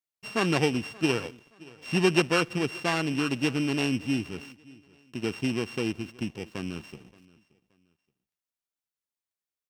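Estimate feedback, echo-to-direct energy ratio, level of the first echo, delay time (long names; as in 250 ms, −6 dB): 29%, −22.5 dB, −23.0 dB, 575 ms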